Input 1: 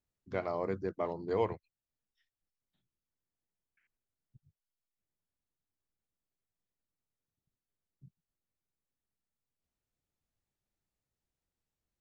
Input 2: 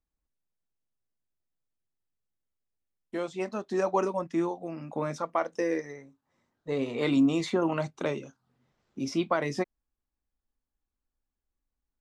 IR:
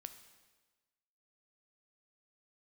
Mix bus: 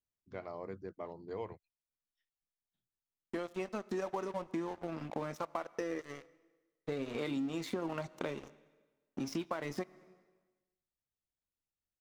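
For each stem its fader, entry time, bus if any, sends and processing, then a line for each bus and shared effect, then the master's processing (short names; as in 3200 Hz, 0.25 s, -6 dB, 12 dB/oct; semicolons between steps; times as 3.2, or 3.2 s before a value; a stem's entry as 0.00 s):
-9.0 dB, 0.00 s, no send, dry
+2.0 dB, 0.20 s, send -5 dB, compressor 1.5:1, threshold -36 dBFS, peak gain reduction 6 dB; crossover distortion -45 dBFS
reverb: on, RT60 1.3 s, pre-delay 6 ms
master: compressor 4:1, threshold -35 dBFS, peak gain reduction 11.5 dB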